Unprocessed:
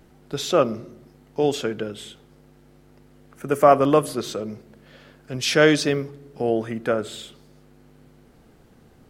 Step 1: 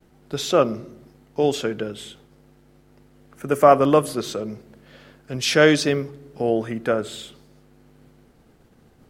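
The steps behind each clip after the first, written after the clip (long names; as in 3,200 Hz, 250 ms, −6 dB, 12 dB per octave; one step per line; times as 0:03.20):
downward expander −49 dBFS
level +1 dB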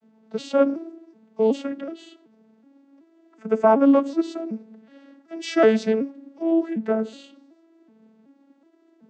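vocoder with an arpeggio as carrier major triad, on A3, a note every 375 ms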